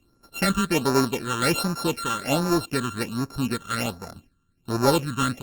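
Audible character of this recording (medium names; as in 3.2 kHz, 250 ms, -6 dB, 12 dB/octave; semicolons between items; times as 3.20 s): a buzz of ramps at a fixed pitch in blocks of 32 samples; phasing stages 8, 1.3 Hz, lowest notch 650–3100 Hz; Opus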